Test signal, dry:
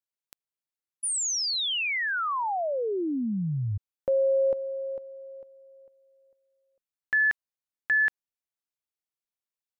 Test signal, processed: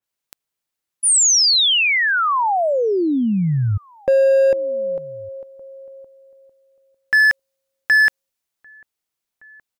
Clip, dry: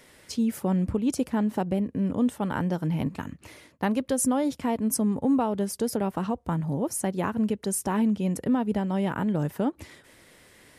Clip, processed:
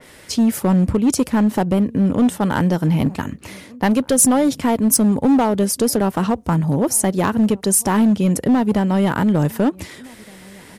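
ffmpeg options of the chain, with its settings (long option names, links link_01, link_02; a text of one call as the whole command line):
ffmpeg -i in.wav -filter_complex "[0:a]asplit=2[link_01][link_02];[link_02]adelay=1516,volume=-26dB,highshelf=frequency=4000:gain=-34.1[link_03];[link_01][link_03]amix=inputs=2:normalize=0,asplit=2[link_04][link_05];[link_05]aeval=exprs='0.0794*(abs(mod(val(0)/0.0794+3,4)-2)-1)':channel_layout=same,volume=-5dB[link_06];[link_04][link_06]amix=inputs=2:normalize=0,adynamicequalizer=threshold=0.0141:dfrequency=3000:dqfactor=0.7:tfrequency=3000:tqfactor=0.7:attack=5:release=100:ratio=0.375:range=2:mode=boostabove:tftype=highshelf,volume=6.5dB" out.wav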